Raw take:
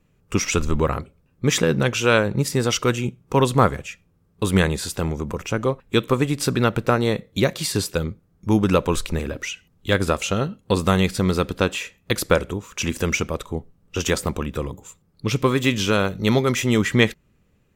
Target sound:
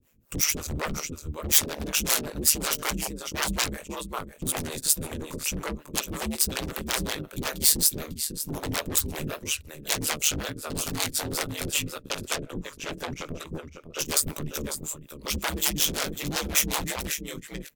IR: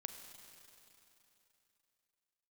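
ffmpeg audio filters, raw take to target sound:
-filter_complex "[0:a]flanger=delay=15.5:depth=7.2:speed=2,asettb=1/sr,asplit=3[link_01][link_02][link_03];[link_01]atrim=end=11.824[link_04];[link_02]atrim=start=11.82:end=13.99,asetpts=PTS-STARTPTS,afade=type=in:duration=0.004:curve=qsin,afade=type=out:start_time=2.166:duration=0.004:curve=qsin,lowpass=frequency=1500:poles=1[link_05];[link_03]atrim=start=13.986[link_06];[link_04][link_05]acrossfade=duration=0.004:curve1=hsin:curve2=qsin[link_07];[link_07][link_06]acrossfade=duration=0.004:curve1=qsin:curve2=hsin,aecho=1:1:548:0.251,aeval=exprs='0.562*sin(PI/2*7.08*val(0)/0.562)':channel_layout=same,aeval=exprs='val(0)*sin(2*PI*75*n/s)':channel_layout=same,aemphasis=mode=production:type=75fm,acrossover=split=410[link_08][link_09];[link_08]aeval=exprs='val(0)*(1-1/2+1/2*cos(2*PI*5.4*n/s))':channel_layout=same[link_10];[link_09]aeval=exprs='val(0)*(1-1/2-1/2*cos(2*PI*5.4*n/s))':channel_layout=same[link_11];[link_10][link_11]amix=inputs=2:normalize=0,volume=-15dB"

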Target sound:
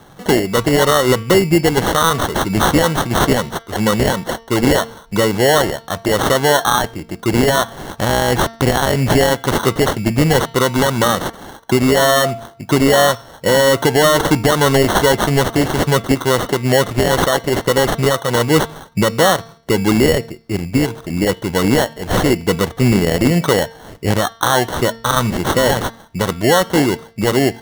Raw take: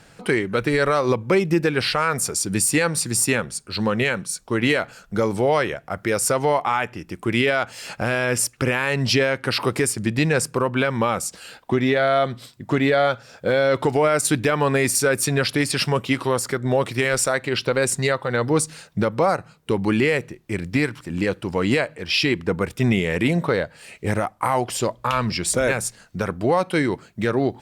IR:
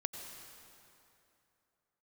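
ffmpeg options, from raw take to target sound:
-filter_complex "[0:a]asettb=1/sr,asplit=3[link_01][link_02][link_03];[link_01]atrim=end=20.164[link_04];[link_02]atrim=start=20.16:end=20.9,asetpts=PTS-STARTPTS,afade=type=in:duration=0.004:curve=qsin,afade=type=out:start_time=0.736:duration=0.004:curve=qsin,equalizer=frequency=3000:width_type=o:width=2.8:gain=-4.5[link_05];[link_03]atrim=start=20.896[link_06];[link_04][link_05]acrossfade=duration=0.004:curve1=hsin:curve2=qsin[link_07];[link_07][link_06]acrossfade=duration=0.004:curve1=qsin:curve2=hsin,acrusher=samples=18:mix=1:aa=0.000001,bandreject=frequency=227.8:width_type=h:width=4,bandreject=frequency=455.6:width_type=h:width=4,bandreject=frequency=683.4:width_type=h:width=4,bandreject=frequency=911.2:width_type=h:width=4,bandreject=frequency=1139:width_type=h:width=4,bandreject=frequency=1366.8:width_type=h:width=4,bandreject=frequency=1594.6:width_type=h:width=4,bandreject=frequency=1822.4:width_type=h:width=4,bandreject=frequency=2050.2:width_type=h:width=4,bandreject=frequency=2278:width_type=h:width=4,bandreject=frequency=2505.8:width_type=h:width=4,bandreject=frequency=2733.6:width_type=h:width=4,bandreject=frequency=2961.4:width_type=h:width=4,bandreject=frequency=3189.2:width_type=h:width=4,bandreject=frequency=3417:width_type=h:width=4,bandreject=frequency=3644.8:width_type=h:width=4,bandreject=frequency=3872.6:width_type=h:width=4,bandreject=frequency=4100.4:width_type=h:width=4,bandreject=frequency=4328.2:width_type=h:width=4,bandreject=frequency=4556:width_type=h:width=4,bandreject=frequency=4783.8:width_type=h:width=4,bandreject=frequency=5011.6:width_type=h:width=4,bandreject=frequency=5239.4:width_type=h:width=4,bandreject=frequency=5467.2:width_type=h:width=4,bandreject=frequency=5695:width_type=h:width=4,bandreject=frequency=5922.8:width_type=h:width=4,volume=6.5dB"

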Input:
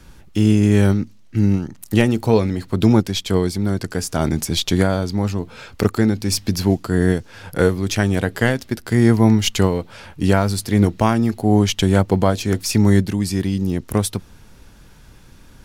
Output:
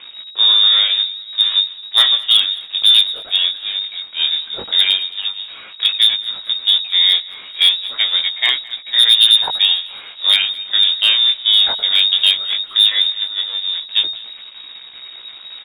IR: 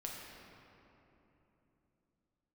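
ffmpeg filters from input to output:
-filter_complex "[0:a]aeval=exprs='val(0)+0.5*0.0891*sgn(val(0))':channel_layout=same,agate=range=-15dB:threshold=-15dB:ratio=16:detection=peak,lowshelf=frequency=130:gain=3,bandreject=frequency=50:width_type=h:width=6,bandreject=frequency=100:width_type=h:width=6,bandreject=frequency=150:width_type=h:width=6,bandreject=frequency=200:width_type=h:width=6,bandreject=frequency=250:width_type=h:width=6,bandreject=frequency=300:width_type=h:width=6,bandreject=frequency=350:width_type=h:width=6,lowpass=frequency=3200:width_type=q:width=0.5098,lowpass=frequency=3200:width_type=q:width=0.6013,lowpass=frequency=3200:width_type=q:width=0.9,lowpass=frequency=3200:width_type=q:width=2.563,afreqshift=-3800,asplit=2[link_01][link_02];[link_02]acompressor=threshold=-24dB:ratio=12,volume=-3dB[link_03];[link_01][link_03]amix=inputs=2:normalize=0,flanger=delay=15.5:depth=6.1:speed=0.13,asoftclip=type=hard:threshold=-7dB,asplit=2[link_04][link_05];[link_05]aecho=0:1:216|432|648:0.0794|0.0326|0.0134[link_06];[link_04][link_06]amix=inputs=2:normalize=0,volume=3dB"

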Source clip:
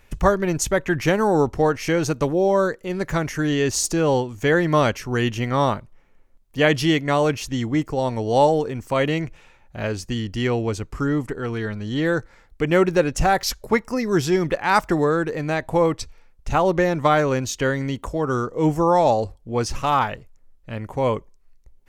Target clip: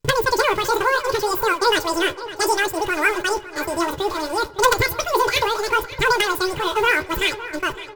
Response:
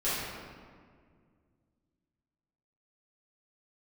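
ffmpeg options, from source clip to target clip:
-filter_complex "[0:a]aeval=exprs='val(0)+0.5*0.0531*sgn(val(0))':channel_layout=same,agate=range=-44dB:threshold=-26dB:ratio=16:detection=peak,equalizer=frequency=130:width_type=o:width=0.93:gain=4.5,aecho=1:1:5.6:0.55,aeval=exprs='(mod(1.33*val(0)+1,2)-1)/1.33':channel_layout=same,acrusher=bits=6:mode=log:mix=0:aa=0.000001,asetrate=121275,aresample=44100,flanger=delay=6.4:depth=8.7:regen=36:speed=0.66:shape=triangular,asplit=2[link_01][link_02];[link_02]adelay=560,lowpass=frequency=4900:poles=1,volume=-14.5dB,asplit=2[link_03][link_04];[link_04]adelay=560,lowpass=frequency=4900:poles=1,volume=0.53,asplit=2[link_05][link_06];[link_06]adelay=560,lowpass=frequency=4900:poles=1,volume=0.53,asplit=2[link_07][link_08];[link_08]adelay=560,lowpass=frequency=4900:poles=1,volume=0.53,asplit=2[link_09][link_10];[link_10]adelay=560,lowpass=frequency=4900:poles=1,volume=0.53[link_11];[link_01][link_03][link_05][link_07][link_09][link_11]amix=inputs=6:normalize=0,asplit=2[link_12][link_13];[1:a]atrim=start_sample=2205,asetrate=40572,aresample=44100[link_14];[link_13][link_14]afir=irnorm=-1:irlink=0,volume=-31.5dB[link_15];[link_12][link_15]amix=inputs=2:normalize=0"

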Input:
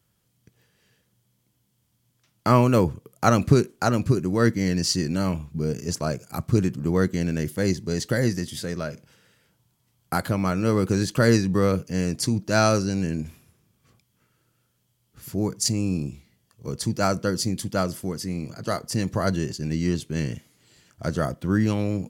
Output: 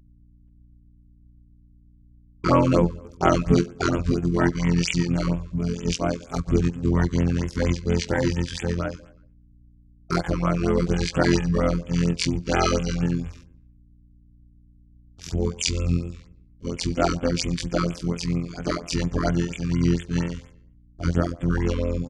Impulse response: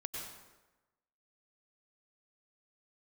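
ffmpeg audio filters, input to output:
-filter_complex "[0:a]afftfilt=real='hypot(re,im)*cos(PI*b)':imag='0':win_size=2048:overlap=0.75,agate=range=-51dB:threshold=-52dB:ratio=16:detection=peak,aeval=exprs='val(0)+0.000891*(sin(2*PI*60*n/s)+sin(2*PI*2*60*n/s)/2+sin(2*PI*3*60*n/s)/3+sin(2*PI*4*60*n/s)/4+sin(2*PI*5*60*n/s)/5)':channel_layout=same,asplit=2[link_01][link_02];[link_02]adelay=118,lowpass=frequency=4400:poles=1,volume=-23dB,asplit=2[link_03][link_04];[link_04]adelay=118,lowpass=frequency=4400:poles=1,volume=0.45,asplit=2[link_05][link_06];[link_06]adelay=118,lowpass=frequency=4400:poles=1,volume=0.45[link_07];[link_01][link_03][link_05][link_07]amix=inputs=4:normalize=0,asplit=2[link_08][link_09];[link_09]asetrate=22050,aresample=44100,atempo=2,volume=-3dB[link_10];[link_08][link_10]amix=inputs=2:normalize=0,asplit=2[link_11][link_12];[link_12]acompressor=threshold=-33dB:ratio=12,volume=1dB[link_13];[link_11][link_13]amix=inputs=2:normalize=0,lowpass=frequency=7000:width=0.5412,lowpass=frequency=7000:width=1.3066,afftfilt=real='re*(1-between(b*sr/1024,630*pow(5100/630,0.5+0.5*sin(2*PI*4.3*pts/sr))/1.41,630*pow(5100/630,0.5+0.5*sin(2*PI*4.3*pts/sr))*1.41))':imag='im*(1-between(b*sr/1024,630*pow(5100/630,0.5+0.5*sin(2*PI*4.3*pts/sr))/1.41,630*pow(5100/630,0.5+0.5*sin(2*PI*4.3*pts/sr))*1.41))':win_size=1024:overlap=0.75,volume=1.5dB"

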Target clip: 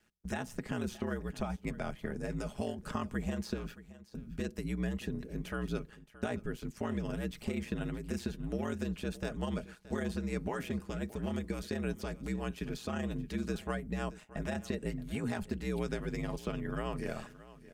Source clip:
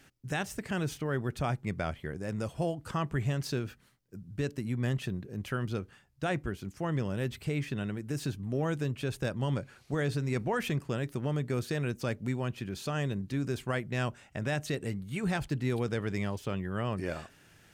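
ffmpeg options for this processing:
ffmpeg -i in.wav -filter_complex "[0:a]acrossover=split=180|1500|6200[link_01][link_02][link_03][link_04];[link_01]acompressor=threshold=-41dB:ratio=4[link_05];[link_02]acompressor=threshold=-37dB:ratio=4[link_06];[link_03]acompressor=threshold=-50dB:ratio=4[link_07];[link_04]acompressor=threshold=-58dB:ratio=4[link_08];[link_05][link_06][link_07][link_08]amix=inputs=4:normalize=0,aeval=exprs='val(0)*sin(2*PI*60*n/s)':channel_layout=same,aecho=1:1:4.8:0.35,agate=range=-14dB:threshold=-54dB:ratio=16:detection=peak,aecho=1:1:623:0.133,volume=3.5dB" out.wav

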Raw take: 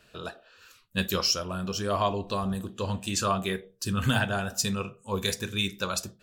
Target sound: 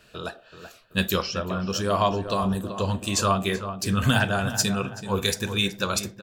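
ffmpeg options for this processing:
ffmpeg -i in.wav -filter_complex "[0:a]asettb=1/sr,asplit=3[link_01][link_02][link_03];[link_01]atrim=end=1.224[link_04];[link_02]atrim=start=1.22:end=1.7,asetpts=PTS-STARTPTS,afade=type=in:duration=0.004:curve=qsin,afade=type=out:start_time=0.476:duration=0.004:curve=qsin,lowpass=2700[link_05];[link_03]atrim=start=1.696[link_06];[link_04][link_05]acrossfade=duration=0.004:curve1=hsin:curve2=qsin[link_07];[link_07][link_06]acrossfade=duration=0.004:curve1=qsin:curve2=hsin,asplit=2[link_08][link_09];[link_09]adelay=381,lowpass=frequency=2100:poles=1,volume=-10dB,asplit=2[link_10][link_11];[link_11]adelay=381,lowpass=frequency=2100:poles=1,volume=0.44,asplit=2[link_12][link_13];[link_13]adelay=381,lowpass=frequency=2100:poles=1,volume=0.44,asplit=2[link_14][link_15];[link_15]adelay=381,lowpass=frequency=2100:poles=1,volume=0.44,asplit=2[link_16][link_17];[link_17]adelay=381,lowpass=frequency=2100:poles=1,volume=0.44[link_18];[link_08][link_10][link_12][link_14][link_16][link_18]amix=inputs=6:normalize=0,volume=4dB" out.wav

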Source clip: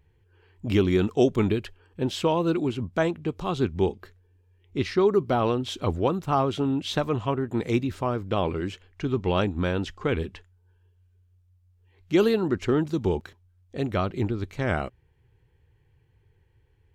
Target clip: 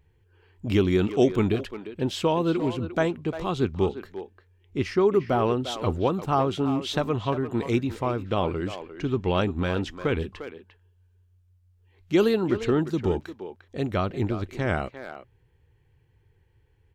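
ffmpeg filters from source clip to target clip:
ffmpeg -i in.wav -filter_complex "[0:a]asettb=1/sr,asplit=3[link_01][link_02][link_03];[link_01]atrim=end=4.774[link_04];[link_02]atrim=start=4.77:end=5.57,asetpts=PTS-STARTPTS,afade=type=in:duration=0.004:curve=qsin,afade=type=out:start_time=0.796:duration=0.004:curve=qsin,equalizer=frequency=3900:width_type=o:width=0.32:gain=-9[link_05];[link_03]atrim=start=5.566[link_06];[link_04][link_05]acrossfade=duration=0.004:curve1=hsin:curve2=qsin[link_07];[link_07][link_06]acrossfade=duration=0.004:curve1=qsin:curve2=hsin,asplit=2[link_08][link_09];[link_09]adelay=350,highpass=300,lowpass=3400,asoftclip=type=hard:threshold=-17dB,volume=-10dB[link_10];[link_08][link_10]amix=inputs=2:normalize=0" out.wav

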